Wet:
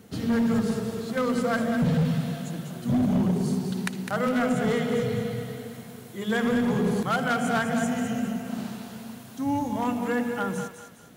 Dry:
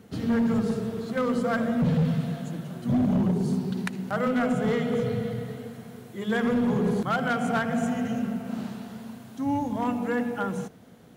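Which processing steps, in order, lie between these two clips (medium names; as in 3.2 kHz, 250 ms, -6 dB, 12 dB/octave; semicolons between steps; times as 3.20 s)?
treble shelf 3.9 kHz +7 dB; on a send: thinning echo 205 ms, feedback 42%, high-pass 900 Hz, level -7 dB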